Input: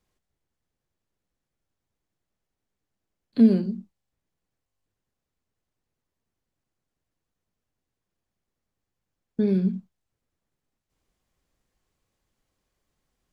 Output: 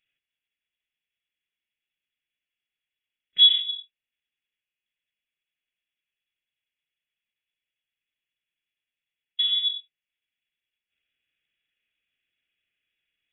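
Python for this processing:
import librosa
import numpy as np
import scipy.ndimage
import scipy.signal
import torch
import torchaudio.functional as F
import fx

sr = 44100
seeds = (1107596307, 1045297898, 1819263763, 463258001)

y = scipy.signal.sosfilt(scipy.signal.butter(4, 210.0, 'highpass', fs=sr, output='sos'), x)
y = fx.fixed_phaser(y, sr, hz=1100.0, stages=4)
y = fx.freq_invert(y, sr, carrier_hz=3600)
y = F.gain(torch.from_numpy(y), 5.0).numpy()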